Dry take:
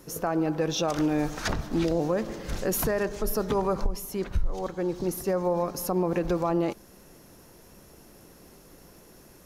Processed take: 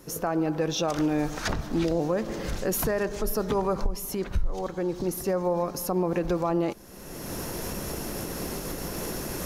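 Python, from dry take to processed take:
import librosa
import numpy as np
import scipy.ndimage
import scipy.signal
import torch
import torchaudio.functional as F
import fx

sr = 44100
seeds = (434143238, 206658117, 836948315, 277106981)

y = fx.recorder_agc(x, sr, target_db=-23.5, rise_db_per_s=30.0, max_gain_db=30)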